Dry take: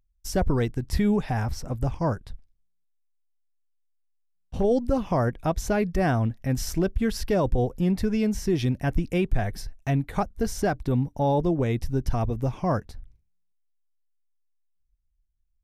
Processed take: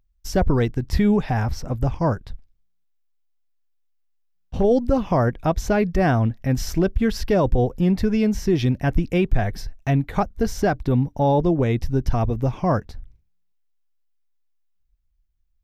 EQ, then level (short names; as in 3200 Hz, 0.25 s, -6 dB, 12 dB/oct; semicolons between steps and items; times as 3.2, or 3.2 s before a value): bell 9600 Hz -10 dB 0.77 oct; +4.5 dB